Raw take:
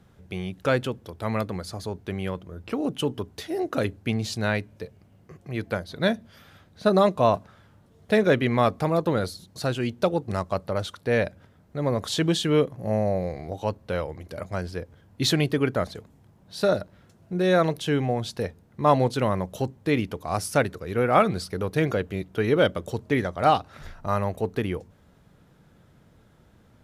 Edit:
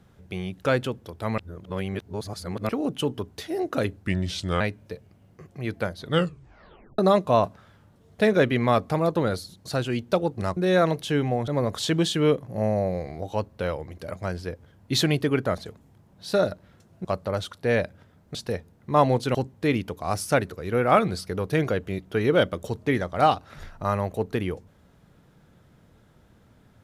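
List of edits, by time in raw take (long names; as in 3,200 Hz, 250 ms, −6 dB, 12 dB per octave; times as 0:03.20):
0:01.38–0:02.69: reverse
0:04.04–0:04.51: play speed 83%
0:05.93: tape stop 0.96 s
0:10.47–0:11.77: swap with 0:17.34–0:18.25
0:19.25–0:19.58: remove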